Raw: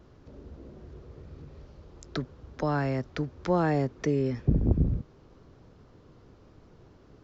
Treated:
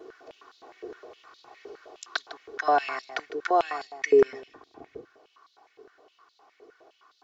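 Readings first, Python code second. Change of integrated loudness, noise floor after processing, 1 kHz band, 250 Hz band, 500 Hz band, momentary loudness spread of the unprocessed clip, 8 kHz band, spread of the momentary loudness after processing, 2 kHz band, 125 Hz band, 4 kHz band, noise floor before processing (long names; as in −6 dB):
+2.5 dB, −68 dBFS, +8.0 dB, −9.0 dB, +6.0 dB, 22 LU, can't be measured, 23 LU, +7.5 dB, below −25 dB, +7.5 dB, −56 dBFS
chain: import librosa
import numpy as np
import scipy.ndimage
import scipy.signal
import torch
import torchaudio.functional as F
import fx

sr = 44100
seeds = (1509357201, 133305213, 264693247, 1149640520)

y = x + 0.91 * np.pad(x, (int(2.7 * sr / 1000.0), 0))[:len(x)]
y = fx.rider(y, sr, range_db=4, speed_s=0.5)
y = y + 10.0 ** (-13.5 / 20.0) * np.pad(y, (int(153 * sr / 1000.0), 0))[:len(y)]
y = fx.filter_held_highpass(y, sr, hz=9.7, low_hz=440.0, high_hz=3900.0)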